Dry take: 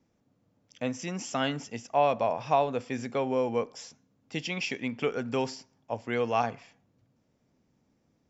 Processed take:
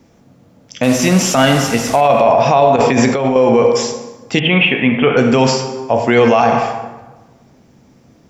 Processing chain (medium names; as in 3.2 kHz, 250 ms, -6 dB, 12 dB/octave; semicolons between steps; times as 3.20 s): 0.83–2.01 s: one-bit delta coder 64 kbps, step -40 dBFS; plate-style reverb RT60 1.2 s, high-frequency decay 0.65×, DRR 5 dB; 2.76–3.36 s: compressor with a negative ratio -34 dBFS, ratio -1; 4.39–5.17 s: elliptic low-pass 3.2 kHz, stop band 40 dB; loudness maximiser +22.5 dB; trim -1 dB